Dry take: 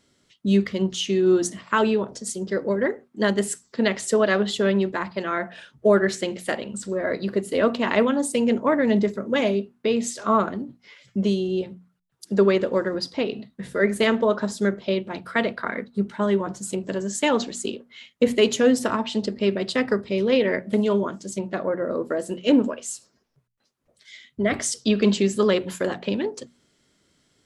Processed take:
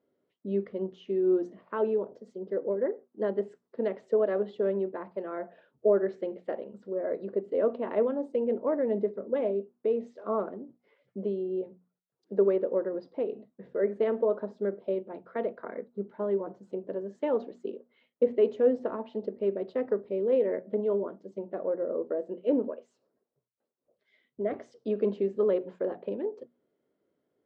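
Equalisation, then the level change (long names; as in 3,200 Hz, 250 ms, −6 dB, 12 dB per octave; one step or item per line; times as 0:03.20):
resonant band-pass 480 Hz, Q 1.8
high-frequency loss of the air 140 metres
−3.0 dB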